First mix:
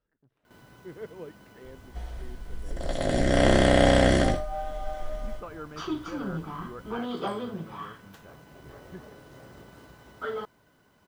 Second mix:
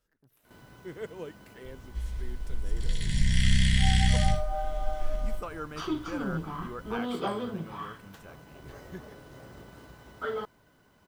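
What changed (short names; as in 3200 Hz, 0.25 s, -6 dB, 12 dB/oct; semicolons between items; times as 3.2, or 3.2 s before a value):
speech: remove tape spacing loss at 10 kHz 28 dB; second sound: add inverse Chebyshev band-stop 310–1200 Hz, stop band 40 dB; master: add low shelf 61 Hz +6 dB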